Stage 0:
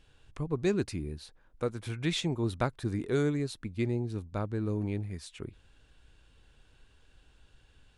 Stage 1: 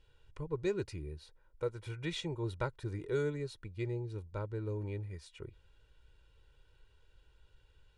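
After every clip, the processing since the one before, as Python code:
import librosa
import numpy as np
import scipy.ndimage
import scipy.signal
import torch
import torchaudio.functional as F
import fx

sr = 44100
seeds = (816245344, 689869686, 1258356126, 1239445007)

y = fx.high_shelf(x, sr, hz=6700.0, db=-8.0)
y = y + 0.78 * np.pad(y, (int(2.1 * sr / 1000.0), 0))[:len(y)]
y = y * librosa.db_to_amplitude(-7.5)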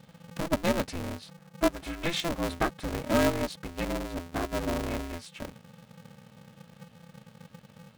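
y = x + 0.41 * np.pad(x, (int(4.2 * sr / 1000.0), 0))[:len(x)]
y = y * np.sign(np.sin(2.0 * np.pi * 170.0 * np.arange(len(y)) / sr))
y = y * librosa.db_to_amplitude(8.5)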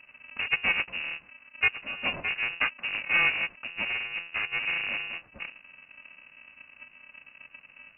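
y = fx.freq_invert(x, sr, carrier_hz=2800)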